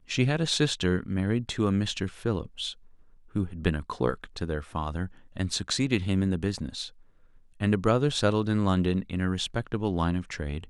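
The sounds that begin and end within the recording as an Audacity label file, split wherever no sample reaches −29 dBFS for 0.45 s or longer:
3.360000	6.850000	sound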